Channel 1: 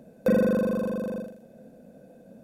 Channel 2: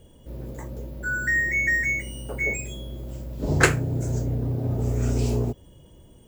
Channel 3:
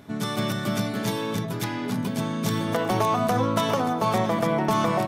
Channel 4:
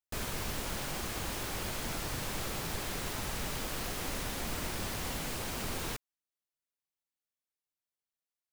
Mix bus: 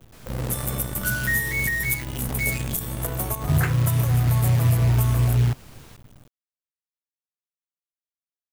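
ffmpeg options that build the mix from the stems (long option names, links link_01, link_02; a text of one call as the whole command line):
ffmpeg -i stem1.wav -i stem2.wav -i stem3.wav -i stem4.wav -filter_complex "[0:a]volume=-20dB[link_01];[1:a]equalizer=frequency=125:width_type=o:width=1:gain=11,equalizer=frequency=250:width_type=o:width=1:gain=-6,equalizer=frequency=500:width_type=o:width=1:gain=-8,equalizer=frequency=4000:width_type=o:width=1:gain=-6,equalizer=frequency=8000:width_type=o:width=1:gain=-12,acrusher=bits=6:dc=4:mix=0:aa=0.000001,volume=1.5dB[link_02];[2:a]highshelf=frequency=10000:gain=8.5,aexciter=amount=7:drive=7.4:freq=7200,adelay=300,volume=-9dB[link_03];[3:a]volume=-12dB[link_04];[link_01][link_02][link_03][link_04]amix=inputs=4:normalize=0,alimiter=limit=-11dB:level=0:latency=1:release=312" out.wav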